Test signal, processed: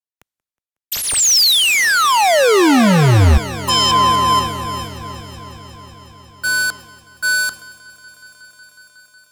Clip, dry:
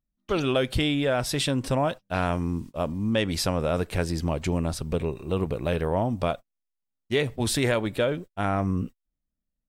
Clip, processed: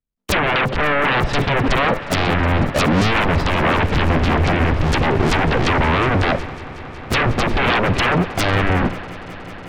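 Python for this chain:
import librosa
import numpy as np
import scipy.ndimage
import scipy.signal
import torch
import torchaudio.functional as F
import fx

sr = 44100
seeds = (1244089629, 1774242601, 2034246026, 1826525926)

p1 = fx.halfwave_hold(x, sr)
p2 = fx.level_steps(p1, sr, step_db=12)
p3 = p1 + (p2 * 10.0 ** (2.0 / 20.0))
p4 = fx.env_lowpass_down(p3, sr, base_hz=470.0, full_db=-13.0)
p5 = fx.fold_sine(p4, sr, drive_db=18, ceiling_db=-7.0)
p6 = p5 + fx.echo_swell(p5, sr, ms=183, loudest=5, wet_db=-17.5, dry=0)
p7 = fx.band_widen(p6, sr, depth_pct=70)
y = p7 * 10.0 ** (-6.5 / 20.0)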